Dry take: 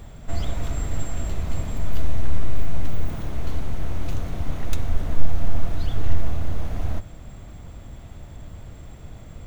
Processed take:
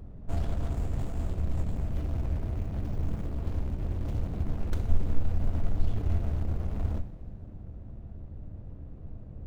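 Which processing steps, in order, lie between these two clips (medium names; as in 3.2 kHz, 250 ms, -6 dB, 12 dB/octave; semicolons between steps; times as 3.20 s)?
local Wiener filter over 41 samples; two-slope reverb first 0.54 s, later 3.2 s, from -15 dB, DRR 7.5 dB; sliding maximum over 17 samples; trim -2.5 dB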